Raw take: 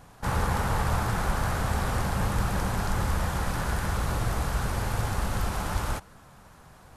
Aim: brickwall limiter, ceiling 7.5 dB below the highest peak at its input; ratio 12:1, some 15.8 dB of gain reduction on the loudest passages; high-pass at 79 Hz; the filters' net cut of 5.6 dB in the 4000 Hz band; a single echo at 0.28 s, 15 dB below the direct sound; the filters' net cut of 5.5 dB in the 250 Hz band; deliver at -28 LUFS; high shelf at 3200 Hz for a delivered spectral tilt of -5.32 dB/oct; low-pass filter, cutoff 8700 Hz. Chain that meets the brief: HPF 79 Hz; LPF 8700 Hz; bell 250 Hz -8.5 dB; high shelf 3200 Hz -3.5 dB; bell 4000 Hz -4.5 dB; compressor 12:1, threshold -42 dBFS; limiter -39 dBFS; echo 0.28 s -15 dB; gain +20.5 dB

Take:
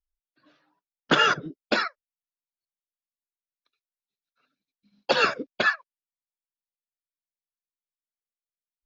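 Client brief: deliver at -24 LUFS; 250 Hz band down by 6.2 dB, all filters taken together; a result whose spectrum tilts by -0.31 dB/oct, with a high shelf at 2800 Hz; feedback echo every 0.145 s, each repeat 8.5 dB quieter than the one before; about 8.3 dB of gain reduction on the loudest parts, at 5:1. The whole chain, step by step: bell 250 Hz -8.5 dB; high shelf 2800 Hz -3.5 dB; compressor 5:1, threshold -27 dBFS; feedback echo 0.145 s, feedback 38%, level -8.5 dB; gain +8.5 dB

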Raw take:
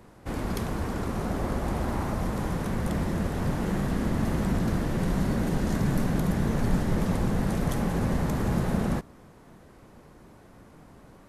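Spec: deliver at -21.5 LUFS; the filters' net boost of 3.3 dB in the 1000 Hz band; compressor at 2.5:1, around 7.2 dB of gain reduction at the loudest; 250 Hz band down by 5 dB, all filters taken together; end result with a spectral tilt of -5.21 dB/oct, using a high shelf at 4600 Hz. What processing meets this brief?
bell 250 Hz -7.5 dB; bell 1000 Hz +5 dB; high shelf 4600 Hz -7 dB; compressor 2.5:1, threshold -31 dBFS; gain +13.5 dB

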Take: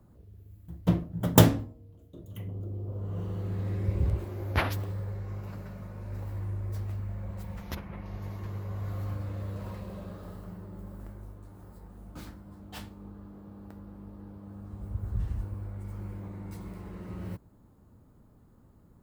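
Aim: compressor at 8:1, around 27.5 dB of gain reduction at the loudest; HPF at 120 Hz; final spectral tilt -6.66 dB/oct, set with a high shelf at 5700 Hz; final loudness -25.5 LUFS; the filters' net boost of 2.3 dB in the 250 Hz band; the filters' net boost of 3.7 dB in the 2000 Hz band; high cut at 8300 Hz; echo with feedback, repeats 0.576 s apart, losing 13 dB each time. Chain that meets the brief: HPF 120 Hz; LPF 8300 Hz; bell 250 Hz +4 dB; bell 2000 Hz +5.5 dB; high shelf 5700 Hz -8.5 dB; compressor 8:1, threshold -41 dBFS; feedback echo 0.576 s, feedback 22%, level -13 dB; gain +21 dB

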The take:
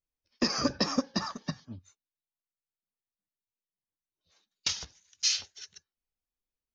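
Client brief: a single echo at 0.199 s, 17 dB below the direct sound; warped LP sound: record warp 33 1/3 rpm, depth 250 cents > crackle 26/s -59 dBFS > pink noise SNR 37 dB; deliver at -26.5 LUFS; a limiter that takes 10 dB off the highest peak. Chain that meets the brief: limiter -23 dBFS; echo 0.199 s -17 dB; record warp 33 1/3 rpm, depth 250 cents; crackle 26/s -59 dBFS; pink noise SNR 37 dB; gain +10 dB

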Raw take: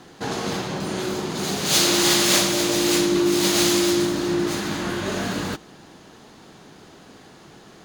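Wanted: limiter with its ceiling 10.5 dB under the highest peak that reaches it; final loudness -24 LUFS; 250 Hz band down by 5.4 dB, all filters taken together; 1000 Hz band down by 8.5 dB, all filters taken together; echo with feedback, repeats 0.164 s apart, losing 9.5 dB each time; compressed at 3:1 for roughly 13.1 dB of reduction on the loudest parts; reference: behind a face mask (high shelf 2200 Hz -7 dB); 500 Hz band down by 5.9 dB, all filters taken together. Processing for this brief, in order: bell 250 Hz -5 dB; bell 500 Hz -4.5 dB; bell 1000 Hz -8 dB; compressor 3:1, threshold -34 dBFS; limiter -29.5 dBFS; high shelf 2200 Hz -7 dB; feedback echo 0.164 s, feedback 33%, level -9.5 dB; gain +17 dB

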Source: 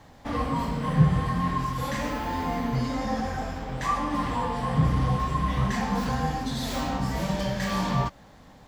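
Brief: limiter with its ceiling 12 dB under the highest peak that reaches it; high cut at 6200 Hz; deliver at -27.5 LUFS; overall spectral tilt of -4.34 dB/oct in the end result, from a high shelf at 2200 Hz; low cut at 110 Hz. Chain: HPF 110 Hz; LPF 6200 Hz; high shelf 2200 Hz +7 dB; gain +2 dB; limiter -18.5 dBFS

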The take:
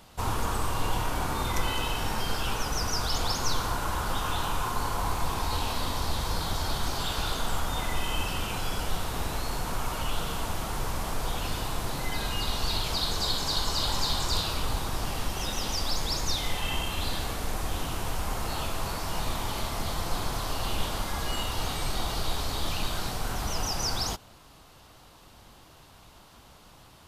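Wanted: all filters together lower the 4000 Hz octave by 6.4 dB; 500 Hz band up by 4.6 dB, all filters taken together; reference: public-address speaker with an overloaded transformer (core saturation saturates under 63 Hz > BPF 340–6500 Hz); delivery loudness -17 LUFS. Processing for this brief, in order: bell 500 Hz +7 dB; bell 4000 Hz -7.5 dB; core saturation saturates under 63 Hz; BPF 340–6500 Hz; gain +18 dB

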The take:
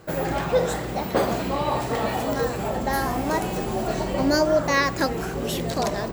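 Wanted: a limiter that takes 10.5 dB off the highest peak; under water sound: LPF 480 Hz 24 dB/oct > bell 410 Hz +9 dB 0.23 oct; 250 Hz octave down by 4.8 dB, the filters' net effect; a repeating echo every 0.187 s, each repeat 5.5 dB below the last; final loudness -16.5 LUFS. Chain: bell 250 Hz -7.5 dB; limiter -20 dBFS; LPF 480 Hz 24 dB/oct; bell 410 Hz +9 dB 0.23 oct; feedback echo 0.187 s, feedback 53%, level -5.5 dB; gain +14.5 dB

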